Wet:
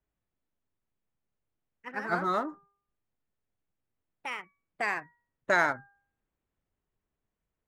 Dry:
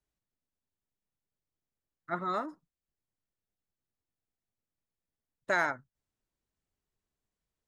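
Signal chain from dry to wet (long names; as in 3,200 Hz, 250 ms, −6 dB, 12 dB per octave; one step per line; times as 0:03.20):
adaptive Wiener filter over 9 samples
hum removal 400.8 Hz, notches 4
delay with pitch and tempo change per echo 183 ms, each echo +3 semitones, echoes 2, each echo −6 dB
level +4 dB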